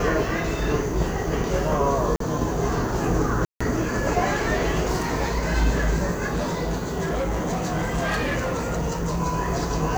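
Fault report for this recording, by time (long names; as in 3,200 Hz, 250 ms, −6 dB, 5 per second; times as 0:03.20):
0:02.16–0:02.20: drop-out 43 ms
0:03.45–0:03.60: drop-out 155 ms
0:06.30–0:09.21: clipping −21 dBFS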